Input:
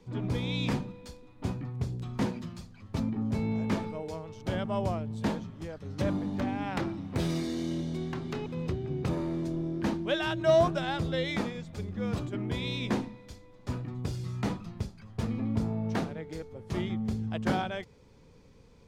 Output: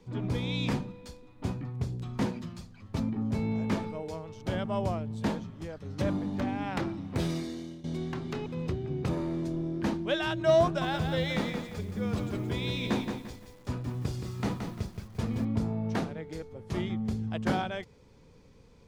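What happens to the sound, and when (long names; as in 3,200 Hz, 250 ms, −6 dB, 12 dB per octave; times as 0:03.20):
0:07.22–0:07.84: fade out, to −17 dB
0:10.64–0:15.45: feedback echo at a low word length 173 ms, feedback 35%, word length 9 bits, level −6 dB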